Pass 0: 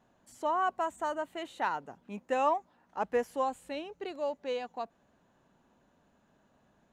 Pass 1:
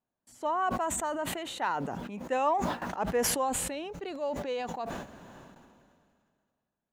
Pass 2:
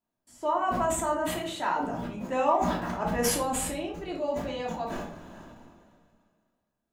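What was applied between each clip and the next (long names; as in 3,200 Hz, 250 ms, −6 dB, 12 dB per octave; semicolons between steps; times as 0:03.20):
noise gate with hold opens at −56 dBFS; level that may fall only so fast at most 28 dB per second
rectangular room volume 430 cubic metres, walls furnished, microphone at 2.9 metres; level −2.5 dB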